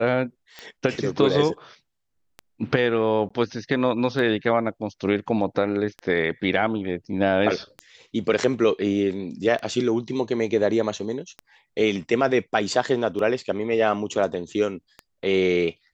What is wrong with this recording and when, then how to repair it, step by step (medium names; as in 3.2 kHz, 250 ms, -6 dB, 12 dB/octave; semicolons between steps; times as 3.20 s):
tick 33 1/3 rpm -20 dBFS
3.29–3.31 s: dropout 15 ms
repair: de-click; interpolate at 3.29 s, 15 ms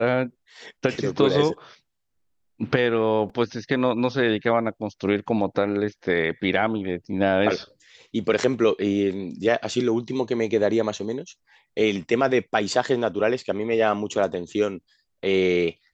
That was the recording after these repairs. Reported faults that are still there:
nothing left